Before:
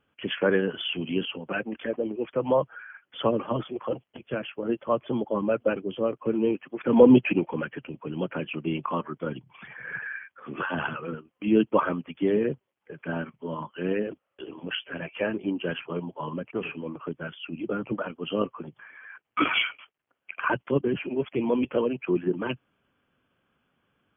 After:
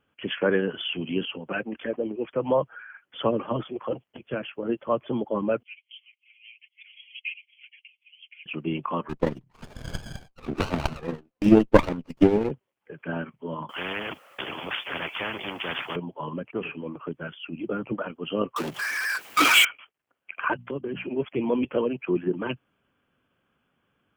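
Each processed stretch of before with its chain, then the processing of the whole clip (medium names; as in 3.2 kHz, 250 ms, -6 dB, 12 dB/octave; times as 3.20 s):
5.63–8.46 s: rippled Chebyshev high-pass 2.1 kHz, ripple 3 dB + distance through air 140 m + comb 6.1 ms, depth 98%
9.09–12.51 s: median filter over 9 samples + transient shaper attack +11 dB, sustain -5 dB + sliding maximum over 17 samples
13.69–15.96 s: high-pass 690 Hz 6 dB/octave + spectrum-flattening compressor 4:1
18.56–19.65 s: high-pass 190 Hz + power-law waveshaper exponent 0.5 + tilt EQ +2 dB/octave
20.53–21.08 s: hum notches 60/120/180/240 Hz + compression 4:1, threshold -28 dBFS
whole clip: none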